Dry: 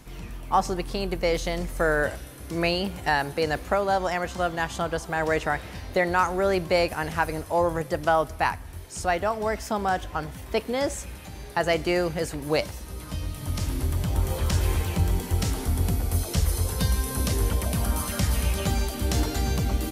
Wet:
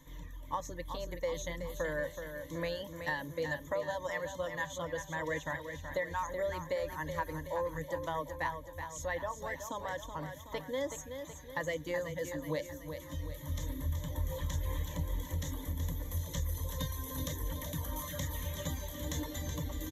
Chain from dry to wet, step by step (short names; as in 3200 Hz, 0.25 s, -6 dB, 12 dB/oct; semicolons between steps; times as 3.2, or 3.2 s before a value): resonator 600 Hz, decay 0.32 s, mix 60%; reverb removal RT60 0.99 s; ripple EQ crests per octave 1.1, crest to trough 17 dB; compressor, threshold -26 dBFS, peak gain reduction 8 dB; on a send: feedback echo 0.375 s, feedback 52%, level -8 dB; on the sum: gain -5 dB